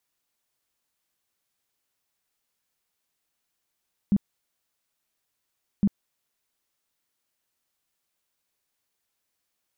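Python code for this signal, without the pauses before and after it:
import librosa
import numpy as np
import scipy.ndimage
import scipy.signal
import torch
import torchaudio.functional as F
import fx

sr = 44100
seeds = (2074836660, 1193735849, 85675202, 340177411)

y = fx.tone_burst(sr, hz=201.0, cycles=9, every_s=1.71, bursts=2, level_db=-16.0)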